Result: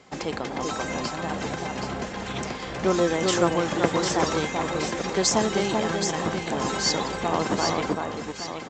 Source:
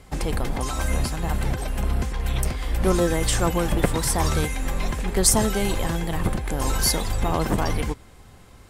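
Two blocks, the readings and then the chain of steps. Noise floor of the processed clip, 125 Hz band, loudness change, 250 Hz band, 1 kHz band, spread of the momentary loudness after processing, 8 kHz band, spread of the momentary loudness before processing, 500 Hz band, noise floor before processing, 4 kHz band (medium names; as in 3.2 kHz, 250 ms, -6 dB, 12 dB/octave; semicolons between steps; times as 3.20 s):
-35 dBFS, -8.0 dB, -1.5 dB, 0.0 dB, +2.0 dB, 9 LU, -4.5 dB, 7 LU, +2.0 dB, -47 dBFS, +1.0 dB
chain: high-pass 210 Hz 12 dB/octave; on a send: echo whose repeats swap between lows and highs 387 ms, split 1.7 kHz, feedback 67%, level -3 dB; on the sum: resampled via 16 kHz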